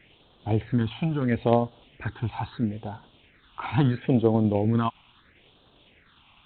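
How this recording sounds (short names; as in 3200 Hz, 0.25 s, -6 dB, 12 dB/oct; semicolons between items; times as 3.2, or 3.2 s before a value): a quantiser's noise floor 8-bit, dither triangular; tremolo saw down 9.9 Hz, depth 30%; phasing stages 6, 0.75 Hz, lowest notch 450–2100 Hz; G.726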